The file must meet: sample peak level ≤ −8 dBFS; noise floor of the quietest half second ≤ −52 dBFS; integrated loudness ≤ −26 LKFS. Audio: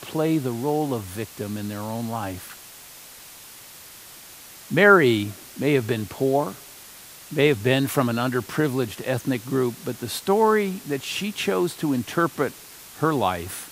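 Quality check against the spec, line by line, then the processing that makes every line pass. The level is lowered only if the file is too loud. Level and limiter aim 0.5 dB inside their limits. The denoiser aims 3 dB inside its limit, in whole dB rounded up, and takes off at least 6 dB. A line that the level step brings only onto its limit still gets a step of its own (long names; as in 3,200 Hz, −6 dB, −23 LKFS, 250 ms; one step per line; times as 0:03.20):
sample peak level −3.0 dBFS: out of spec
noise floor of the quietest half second −44 dBFS: out of spec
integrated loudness −23.5 LKFS: out of spec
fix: broadband denoise 8 dB, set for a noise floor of −44 dBFS
level −3 dB
brickwall limiter −8.5 dBFS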